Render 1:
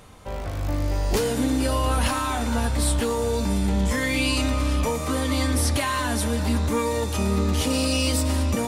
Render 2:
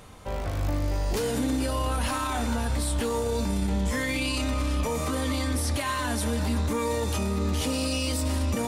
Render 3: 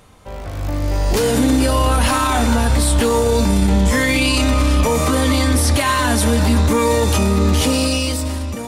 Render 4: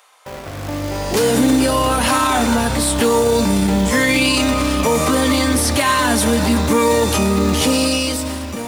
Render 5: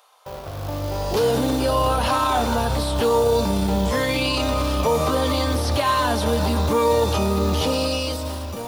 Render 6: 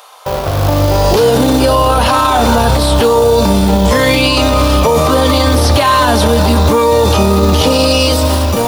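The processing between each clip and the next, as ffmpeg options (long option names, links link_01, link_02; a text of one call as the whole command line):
ffmpeg -i in.wav -af "alimiter=limit=-19dB:level=0:latency=1:release=38" out.wav
ffmpeg -i in.wav -af "dynaudnorm=framelen=160:gausssize=11:maxgain=12dB" out.wav
ffmpeg -i in.wav -filter_complex "[0:a]highpass=120,acrossover=split=630|7400[link_01][link_02][link_03];[link_01]acrusher=bits=5:mix=0:aa=0.000001[link_04];[link_04][link_02][link_03]amix=inputs=3:normalize=0,volume=1.5dB" out.wav
ffmpeg -i in.wav -filter_complex "[0:a]acrossover=split=5400[link_01][link_02];[link_02]acompressor=threshold=-30dB:ratio=4:attack=1:release=60[link_03];[link_01][link_03]amix=inputs=2:normalize=0,equalizer=frequency=250:width_type=o:width=1:gain=-10,equalizer=frequency=2000:width_type=o:width=1:gain=-11,equalizer=frequency=8000:width_type=o:width=1:gain=-9" out.wav
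ffmpeg -i in.wav -af "alimiter=level_in=18.5dB:limit=-1dB:release=50:level=0:latency=1,volume=-1dB" out.wav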